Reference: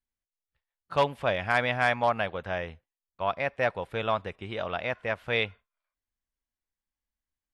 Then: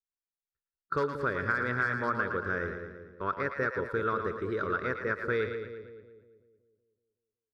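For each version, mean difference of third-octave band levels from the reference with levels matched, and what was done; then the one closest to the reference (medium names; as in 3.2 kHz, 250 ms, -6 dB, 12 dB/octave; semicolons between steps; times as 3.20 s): 6.5 dB: gate -46 dBFS, range -18 dB; FFT filter 200 Hz 0 dB, 420 Hz +10 dB, 720 Hz -20 dB, 1.4 kHz +11 dB, 2.9 kHz -20 dB, 4.5 kHz -1 dB, 9.8 kHz -8 dB; compression, threshold -26 dBFS, peak gain reduction 9.5 dB; on a send: two-band feedback delay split 570 Hz, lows 187 ms, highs 113 ms, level -7 dB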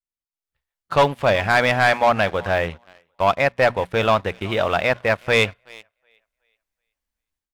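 4.0 dB: hum notches 60/120/180/240 Hz; on a send: thinning echo 372 ms, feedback 27%, high-pass 370 Hz, level -23.5 dB; on the sum: waveshaping leveller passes 2; level rider gain up to 16 dB; trim -6 dB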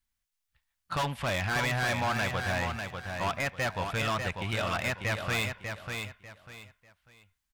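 10.5 dB: peaking EQ 420 Hz -12.5 dB 1.5 oct; in parallel at +2 dB: peak limiter -24 dBFS, peak gain reduction 11 dB; on the sum: overload inside the chain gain 28 dB; feedback delay 595 ms, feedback 27%, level -6 dB; trim +1.5 dB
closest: second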